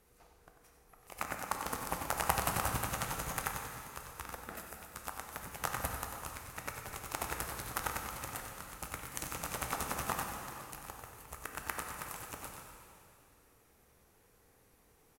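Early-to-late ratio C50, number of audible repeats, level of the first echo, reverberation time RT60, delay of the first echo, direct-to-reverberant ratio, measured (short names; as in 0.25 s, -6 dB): 3.0 dB, 1, -9.5 dB, 2.6 s, 94 ms, 2.0 dB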